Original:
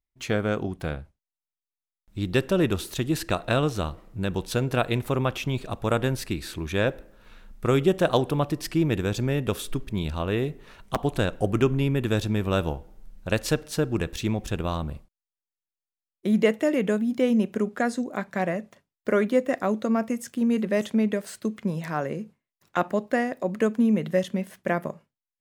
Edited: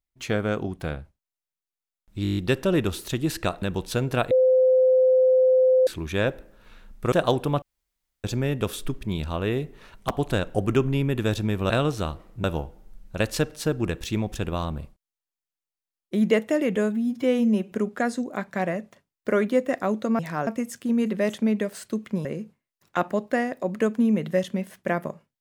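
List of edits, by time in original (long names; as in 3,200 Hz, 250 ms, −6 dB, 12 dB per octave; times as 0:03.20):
0:02.23: stutter 0.02 s, 8 plays
0:03.48–0:04.22: move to 0:12.56
0:04.91–0:06.47: beep over 515 Hz −14.5 dBFS
0:07.72–0:07.98: remove
0:08.48–0:09.10: fill with room tone
0:16.88–0:17.52: time-stretch 1.5×
0:21.77–0:22.05: move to 0:19.99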